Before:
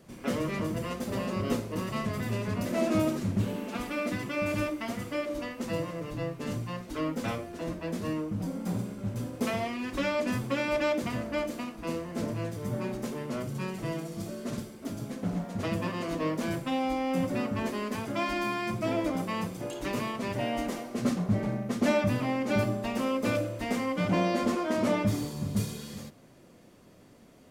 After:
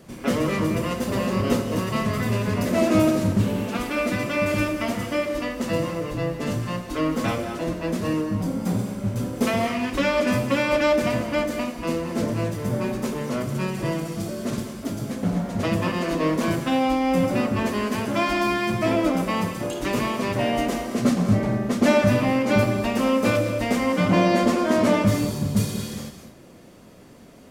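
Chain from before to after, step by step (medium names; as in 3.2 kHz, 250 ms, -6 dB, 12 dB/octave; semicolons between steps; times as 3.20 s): gated-style reverb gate 250 ms rising, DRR 7.5 dB; trim +7.5 dB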